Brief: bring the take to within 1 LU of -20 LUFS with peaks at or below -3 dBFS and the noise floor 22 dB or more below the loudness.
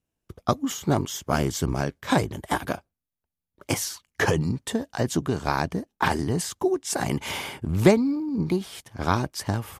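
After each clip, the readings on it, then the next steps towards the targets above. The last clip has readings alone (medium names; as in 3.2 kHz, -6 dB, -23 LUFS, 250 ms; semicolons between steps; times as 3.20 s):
loudness -26.0 LUFS; peak level -6.0 dBFS; loudness target -20.0 LUFS
-> trim +6 dB; peak limiter -3 dBFS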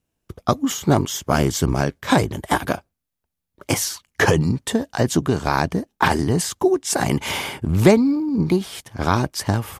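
loudness -20.5 LUFS; peak level -3.0 dBFS; noise floor -81 dBFS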